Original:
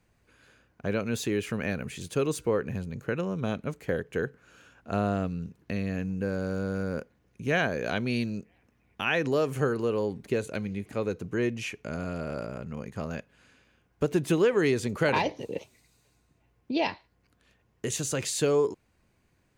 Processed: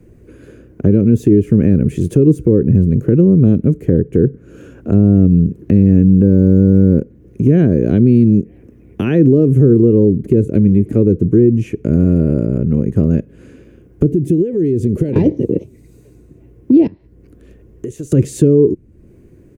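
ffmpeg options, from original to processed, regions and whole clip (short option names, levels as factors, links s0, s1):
-filter_complex "[0:a]asettb=1/sr,asplit=3[s0][s1][s2];[s0]atrim=end=14.114[s3];[s1]atrim=start=14.11:end=15.16,asetpts=PTS-STARTPTS,afade=t=in:d=0.004:c=qsin,afade=t=out:st=1.046:d=0.004:c=qsin,acompressor=threshold=0.02:ratio=4:attack=3.2:release=140:knee=1:detection=peak,equalizer=f=1200:w=1.4:g=-14[s4];[s2]atrim=start=15.156[s5];[s3][s4]acrossfade=d=0.004:c1=hsin:c2=qsin[s6];[s6][s5]acrossfade=d=0.004:c1=qsin:c2=hsin,asettb=1/sr,asplit=3[s7][s8][s9];[s7]atrim=end=16.874[s10];[s8]atrim=start=16.87:end=18.12,asetpts=PTS-STARTPTS,afade=t=in:d=0.004:c=qsin,afade=t=out:st=1.246:d=0.004:c=qsin,asubboost=boost=10:cutoff=56,acompressor=threshold=0.00178:ratio=2.5:attack=3.2:release=140:knee=1:detection=peak[s11];[s9]atrim=start=18.116[s12];[s10][s11]acrossfade=d=0.004:c1=hsin:c2=qsin[s13];[s13][s12]acrossfade=d=0.004:c1=qsin:c2=hsin,firequalizer=gain_entry='entry(220,0);entry(350,7);entry(790,-18);entry(1900,-16);entry(4200,-23);entry(6100,-17);entry(10000,-13)':delay=0.05:min_phase=1,acrossover=split=280[s14][s15];[s15]acompressor=threshold=0.00282:ratio=2.5[s16];[s14][s16]amix=inputs=2:normalize=0,alimiter=level_in=18.8:limit=0.891:release=50:level=0:latency=1,volume=0.891"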